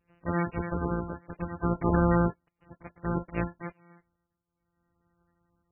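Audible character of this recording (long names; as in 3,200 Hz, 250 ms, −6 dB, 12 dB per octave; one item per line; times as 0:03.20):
a buzz of ramps at a fixed pitch in blocks of 256 samples
tremolo triangle 0.62 Hz, depth 90%
MP3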